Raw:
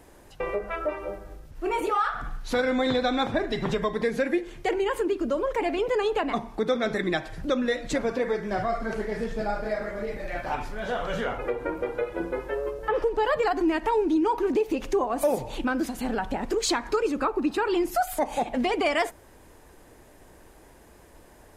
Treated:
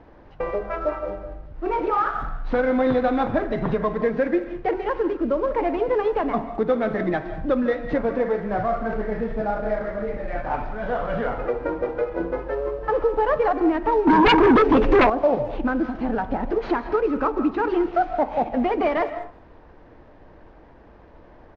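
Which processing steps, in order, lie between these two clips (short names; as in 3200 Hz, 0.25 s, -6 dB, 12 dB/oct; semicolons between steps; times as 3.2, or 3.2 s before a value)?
CVSD 32 kbps; LPF 1500 Hz 12 dB/oct; notch 390 Hz, Q 12; speakerphone echo 0.21 s, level -25 dB; digital reverb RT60 0.43 s, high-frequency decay 0.55×, pre-delay 0.115 s, DRR 11.5 dB; 14.07–15.1 sine folder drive 9 dB, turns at -15.5 dBFS; gain +4.5 dB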